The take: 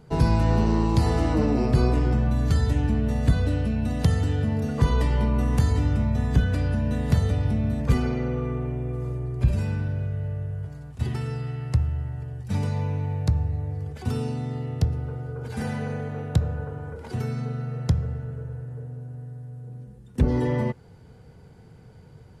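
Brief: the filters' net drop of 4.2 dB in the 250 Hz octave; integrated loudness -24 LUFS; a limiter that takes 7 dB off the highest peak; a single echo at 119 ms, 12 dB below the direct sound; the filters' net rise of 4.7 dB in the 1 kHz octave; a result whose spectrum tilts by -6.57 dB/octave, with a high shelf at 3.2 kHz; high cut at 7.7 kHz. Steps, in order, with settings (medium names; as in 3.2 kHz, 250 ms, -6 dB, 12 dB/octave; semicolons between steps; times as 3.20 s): low-pass 7.7 kHz; peaking EQ 250 Hz -6 dB; peaking EQ 1 kHz +5.5 dB; treble shelf 3.2 kHz +5.5 dB; peak limiter -15.5 dBFS; delay 119 ms -12 dB; trim +3.5 dB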